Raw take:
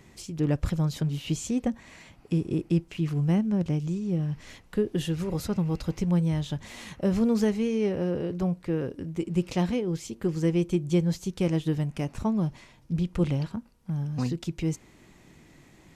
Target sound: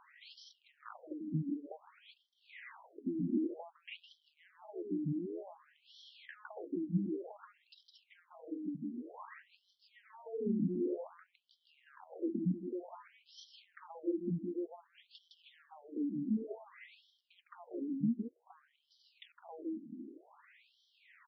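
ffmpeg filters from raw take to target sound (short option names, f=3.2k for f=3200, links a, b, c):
-af "atempo=0.75,equalizer=f=250:t=o:w=1:g=11,equalizer=f=500:t=o:w=1:g=-8,equalizer=f=1k:t=o:w=1:g=4,equalizer=f=8k:t=o:w=1:g=-11,acompressor=threshold=-30dB:ratio=10,aeval=exprs='(tanh(35.5*val(0)+0.45)-tanh(0.45))/35.5':c=same,highshelf=f=2.8k:g=-9,aecho=1:1:160:0.668,afftfilt=real='re*between(b*sr/1024,240*pow(4300/240,0.5+0.5*sin(2*PI*0.54*pts/sr))/1.41,240*pow(4300/240,0.5+0.5*sin(2*PI*0.54*pts/sr))*1.41)':imag='im*between(b*sr/1024,240*pow(4300/240,0.5+0.5*sin(2*PI*0.54*pts/sr))/1.41,240*pow(4300/240,0.5+0.5*sin(2*PI*0.54*pts/sr))*1.41)':win_size=1024:overlap=0.75,volume=5.5dB"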